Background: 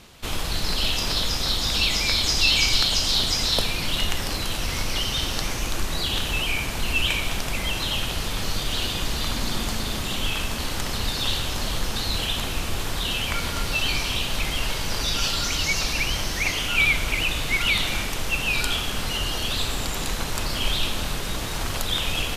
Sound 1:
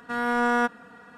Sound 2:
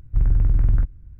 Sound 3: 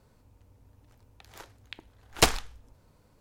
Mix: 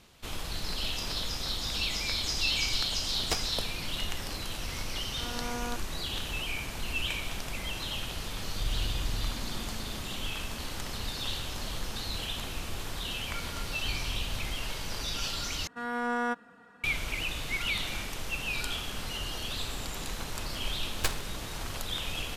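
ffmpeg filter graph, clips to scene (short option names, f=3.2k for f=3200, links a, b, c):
-filter_complex "[3:a]asplit=2[a][b];[1:a]asplit=2[c][d];[2:a]asplit=2[e][f];[0:a]volume=-9.5dB[g];[c]lowpass=1.3k[h];[f]acompressor=threshold=-21dB:ratio=6:attack=3.2:release=140:knee=1:detection=peak[i];[b]aeval=exprs='abs(val(0))':c=same[j];[g]asplit=2[k][l];[k]atrim=end=15.674[m];[d]atrim=end=1.17,asetpts=PTS-STARTPTS,volume=-7.5dB[n];[l]atrim=start=16.836[o];[a]atrim=end=3.2,asetpts=PTS-STARTPTS,volume=-12dB,afade=t=in:d=0.004:c=hsin,afade=t=out:st=3.196:d=0.004:c=hsin,adelay=1090[p];[h]atrim=end=1.17,asetpts=PTS-STARTPTS,volume=-13.5dB,afade=t=in:d=0.004:c=hsin,afade=t=out:st=1.166:d=0.004:c=hsin,adelay=224469S[q];[e]atrim=end=1.19,asetpts=PTS-STARTPTS,volume=-15.5dB,afade=t=in:d=0.004:c=hsin,afade=t=out:st=1.186:d=0.004:c=hsin,adelay=8450[r];[i]atrim=end=1.19,asetpts=PTS-STARTPTS,volume=-12.5dB,afade=t=in:d=0.004:c=hsin,afade=t=out:st=1.186:d=0.004:c=hsin,adelay=13720[s];[j]atrim=end=3.2,asetpts=PTS-STARTPTS,volume=-7dB,afade=t=in:d=0.004:c=hsin,afade=t=out:st=3.196:d=0.004:c=hsin,adelay=18820[t];[m][n]acrossfade=d=0.004:c1=hsin:c2=hsin[u];[u][o]acrossfade=d=0.004:c1=hsin:c2=hsin[v];[v][p][q][r][s][t]amix=inputs=6:normalize=0"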